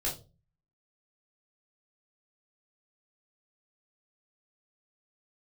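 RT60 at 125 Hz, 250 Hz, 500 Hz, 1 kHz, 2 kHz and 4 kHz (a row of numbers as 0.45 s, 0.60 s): 0.60 s, 0.50 s, 0.35 s, 0.25 s, 0.20 s, 0.25 s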